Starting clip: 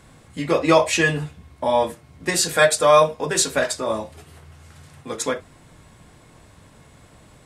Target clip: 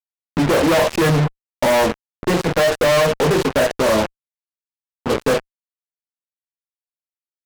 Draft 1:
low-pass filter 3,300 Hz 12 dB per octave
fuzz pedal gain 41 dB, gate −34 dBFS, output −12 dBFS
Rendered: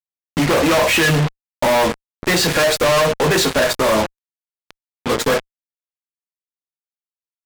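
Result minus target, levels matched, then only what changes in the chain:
4,000 Hz band +4.0 dB
change: low-pass filter 880 Hz 12 dB per octave

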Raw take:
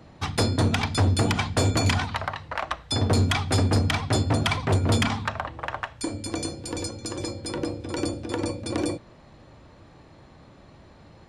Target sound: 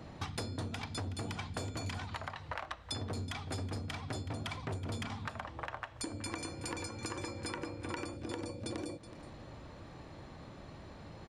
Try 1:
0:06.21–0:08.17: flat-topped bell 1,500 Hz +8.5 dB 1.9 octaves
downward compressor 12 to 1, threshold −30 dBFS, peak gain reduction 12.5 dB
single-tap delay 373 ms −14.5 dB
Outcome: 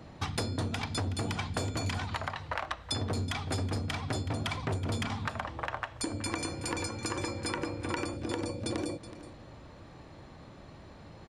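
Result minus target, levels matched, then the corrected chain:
downward compressor: peak gain reduction −6.5 dB
0:06.21–0:08.17: flat-topped bell 1,500 Hz +8.5 dB 1.9 octaves
downward compressor 12 to 1, threshold −37 dBFS, peak gain reduction 19 dB
single-tap delay 373 ms −14.5 dB

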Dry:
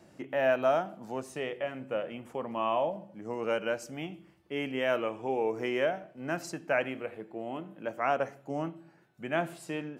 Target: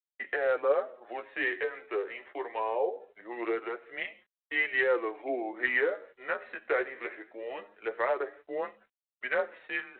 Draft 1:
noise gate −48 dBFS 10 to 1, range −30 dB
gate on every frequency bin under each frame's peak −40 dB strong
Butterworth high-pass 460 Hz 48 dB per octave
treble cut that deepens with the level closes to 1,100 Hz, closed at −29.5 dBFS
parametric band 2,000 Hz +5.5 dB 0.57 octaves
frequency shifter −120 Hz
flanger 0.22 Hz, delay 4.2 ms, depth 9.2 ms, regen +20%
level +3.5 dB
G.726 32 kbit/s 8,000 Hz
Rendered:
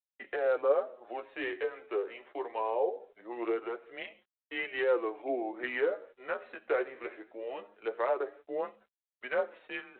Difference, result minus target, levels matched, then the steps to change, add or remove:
2,000 Hz band −5.5 dB
change: parametric band 2,000 Hz +15.5 dB 0.57 octaves

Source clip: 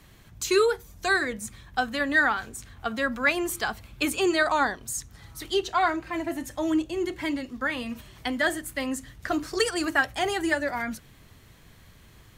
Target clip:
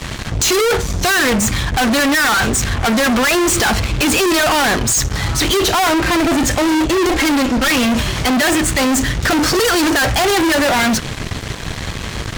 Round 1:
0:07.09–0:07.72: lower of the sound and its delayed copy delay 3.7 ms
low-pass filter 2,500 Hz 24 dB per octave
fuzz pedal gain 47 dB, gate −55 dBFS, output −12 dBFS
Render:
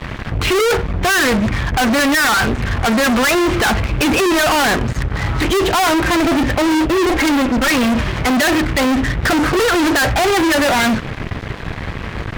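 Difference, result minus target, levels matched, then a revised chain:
8,000 Hz band −6.0 dB
0:07.09–0:07.72: lower of the sound and its delayed copy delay 3.7 ms
low-pass filter 7,700 Hz 24 dB per octave
fuzz pedal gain 47 dB, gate −55 dBFS, output −12 dBFS

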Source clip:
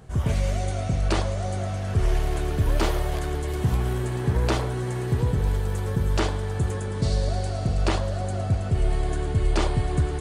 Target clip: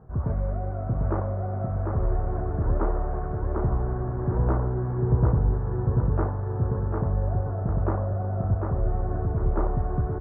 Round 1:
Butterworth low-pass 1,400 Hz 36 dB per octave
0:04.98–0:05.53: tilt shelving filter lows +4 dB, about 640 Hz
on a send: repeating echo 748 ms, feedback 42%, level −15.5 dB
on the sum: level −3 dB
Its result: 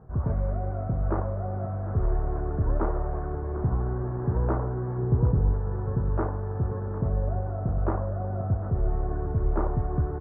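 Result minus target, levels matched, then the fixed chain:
echo-to-direct −11.5 dB
Butterworth low-pass 1,400 Hz 36 dB per octave
0:04.98–0:05.53: tilt shelving filter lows +4 dB, about 640 Hz
on a send: repeating echo 748 ms, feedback 42%, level −4 dB
on the sum: level −3 dB

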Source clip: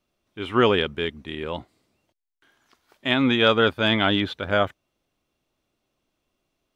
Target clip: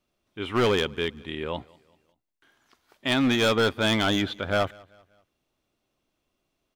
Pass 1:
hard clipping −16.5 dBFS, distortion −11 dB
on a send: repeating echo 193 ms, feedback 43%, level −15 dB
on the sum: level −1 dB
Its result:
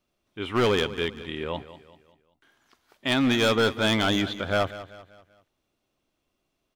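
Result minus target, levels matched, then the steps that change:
echo-to-direct +10 dB
change: repeating echo 193 ms, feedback 43%, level −25 dB

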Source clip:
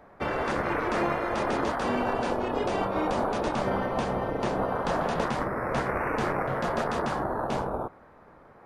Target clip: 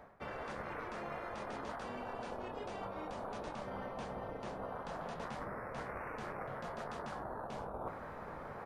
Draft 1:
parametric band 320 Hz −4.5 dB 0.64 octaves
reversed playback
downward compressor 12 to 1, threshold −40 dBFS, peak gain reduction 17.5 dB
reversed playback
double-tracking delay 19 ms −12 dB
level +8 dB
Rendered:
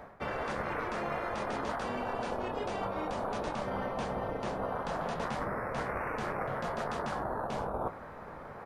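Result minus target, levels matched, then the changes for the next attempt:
downward compressor: peak gain reduction −8.5 dB
change: downward compressor 12 to 1, threshold −49 dBFS, peak gain reduction 25.5 dB

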